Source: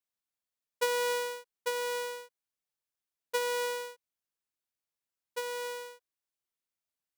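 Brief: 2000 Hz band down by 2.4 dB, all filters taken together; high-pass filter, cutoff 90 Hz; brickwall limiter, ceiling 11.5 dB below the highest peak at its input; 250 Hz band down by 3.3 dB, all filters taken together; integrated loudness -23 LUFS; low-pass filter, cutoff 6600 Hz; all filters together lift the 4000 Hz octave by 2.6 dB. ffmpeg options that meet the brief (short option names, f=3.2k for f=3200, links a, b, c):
-af "highpass=90,lowpass=6.6k,equalizer=f=250:t=o:g=-4,equalizer=f=2k:t=o:g=-4.5,equalizer=f=4k:t=o:g=5.5,volume=16dB,alimiter=limit=-11.5dB:level=0:latency=1"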